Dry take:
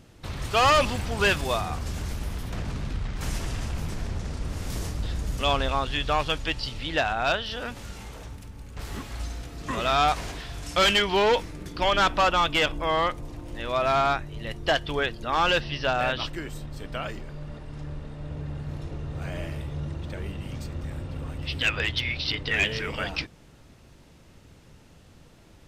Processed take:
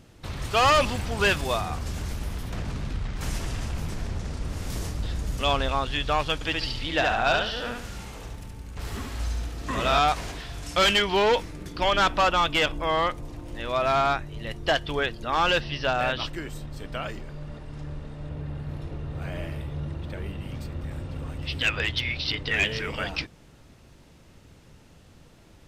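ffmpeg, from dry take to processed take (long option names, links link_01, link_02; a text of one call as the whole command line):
ffmpeg -i in.wav -filter_complex "[0:a]asettb=1/sr,asplit=3[link_01][link_02][link_03];[link_01]atrim=end=6.344[link_04];[link_02]atrim=start=6.34:end=9.99,asetpts=PTS-STARTPTS,afade=type=in:duration=0.004:curve=qsin,afade=type=out:start_time=3.646:duration=0.004:curve=qsin,aecho=1:1:71|142|213|284:0.708|0.241|0.0818|0.0278,atrim=end_sample=160965[link_05];[link_03]atrim=start=9.986[link_06];[link_04][link_05]acrossfade=duration=0.004:curve1=hsin:curve2=qsin[link_07];[link_07][link_06]acrossfade=duration=0.004:curve1=qsin:curve2=hsin,asettb=1/sr,asplit=3[link_08][link_09][link_10];[link_08]atrim=end=18.294[link_11];[link_09]atrim=start=18.29:end=20.91,asetpts=PTS-STARTPTS,afade=type=in:duration=0.004:curve=qsin,afade=type=out:start_time=2.616:duration=0.004:curve=qsin,equalizer=frequency=6600:width_type=o:width=0.86:gain=-6[link_12];[link_10]atrim=start=20.906[link_13];[link_11][link_12]acrossfade=duration=0.004:curve1=hsin:curve2=qsin[link_14];[link_14][link_13]acrossfade=duration=0.004:curve1=qsin:curve2=hsin" out.wav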